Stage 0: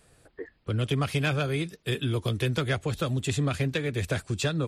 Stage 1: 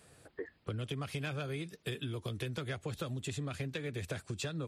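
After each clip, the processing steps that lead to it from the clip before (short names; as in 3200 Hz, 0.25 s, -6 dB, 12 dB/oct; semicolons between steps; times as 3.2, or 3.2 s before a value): HPF 73 Hz; compressor 6:1, threshold -36 dBFS, peak gain reduction 13.5 dB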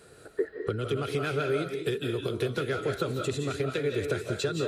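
small resonant body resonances 410/1400/4000 Hz, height 12 dB, ringing for 25 ms; on a send at -3 dB: reverb RT60 0.40 s, pre-delay 0.13 s; on the sum: gain +3.5 dB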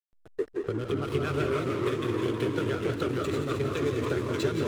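echoes that change speed 0.128 s, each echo -2 st, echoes 3; backlash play -33.5 dBFS; split-band echo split 320 Hz, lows 0.152 s, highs 0.316 s, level -10 dB; gain -1.5 dB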